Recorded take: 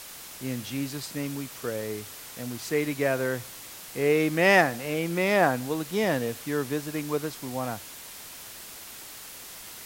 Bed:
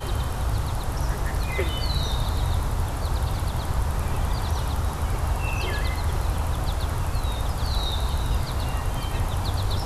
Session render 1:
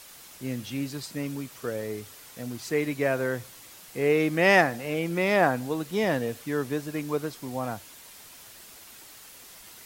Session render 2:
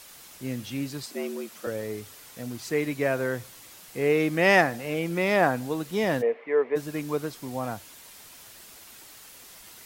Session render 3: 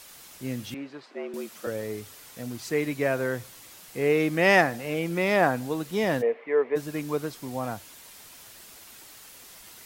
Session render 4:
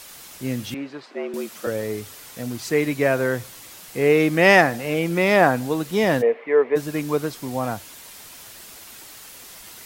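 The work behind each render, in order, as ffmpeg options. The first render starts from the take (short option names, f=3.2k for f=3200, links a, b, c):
-af "afftdn=nr=6:nf=-43"
-filter_complex "[0:a]asettb=1/sr,asplit=3[a][b][c];[a]atrim=end=1.064[d];[b]atrim=start=1.06:end=1.67,asetpts=PTS-STARTPTS,afade=t=in:d=0.004:c=qsin,afade=t=out:st=0.606:d=0.004:c=qsin,afreqshift=91[e];[c]atrim=start=1.666[f];[d][e]acrossfade=d=0.004:c1=hsin:c2=qsin[g];[g][f]acrossfade=d=0.004:c1=qsin:c2=hsin,asplit=3[h][i][j];[h]afade=t=out:st=6.21:d=0.02[k];[i]highpass=f=270:w=0.5412,highpass=f=270:w=1.3066,equalizer=f=300:t=q:w=4:g=-8,equalizer=f=450:t=q:w=4:g=9,equalizer=f=650:t=q:w=4:g=5,equalizer=f=990:t=q:w=4:g=4,equalizer=f=1.5k:t=q:w=4:g=-6,equalizer=f=2.1k:t=q:w=4:g=10,lowpass=f=2.3k:w=0.5412,lowpass=f=2.3k:w=1.3066,afade=t=in:st=6.21:d=0.02,afade=t=out:st=6.75:d=0.02[l];[j]afade=t=in:st=6.75:d=0.02[m];[k][l][m]amix=inputs=3:normalize=0"
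-filter_complex "[0:a]asettb=1/sr,asplit=3[a][b][c];[a]atrim=end=0.744[d];[b]atrim=start=0.74:end=1.34,asetpts=PTS-STARTPTS,afade=t=in:d=0.004:c=qsin,afade=t=out:st=0.596:d=0.004:c=qsin,highpass=370,lowpass=2.1k[e];[c]atrim=start=1.336[f];[d][e]acrossfade=d=0.004:c1=hsin:c2=qsin[g];[g][f]acrossfade=d=0.004:c1=qsin:c2=hsin"
-af "volume=6dB,alimiter=limit=-2dB:level=0:latency=1"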